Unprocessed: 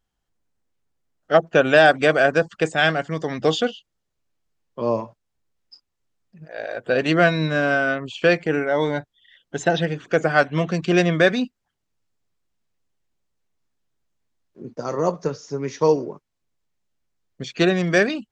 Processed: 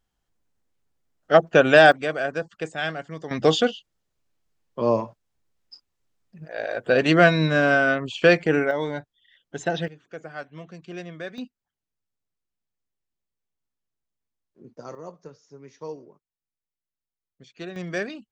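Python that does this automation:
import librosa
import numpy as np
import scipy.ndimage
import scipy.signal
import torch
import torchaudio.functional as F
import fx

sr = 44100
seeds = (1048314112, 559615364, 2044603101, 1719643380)

y = fx.gain(x, sr, db=fx.steps((0.0, 0.5), (1.92, -9.5), (3.31, 1.0), (8.71, -6.0), (9.88, -19.0), (11.38, -11.0), (14.95, -18.5), (17.76, -11.0)))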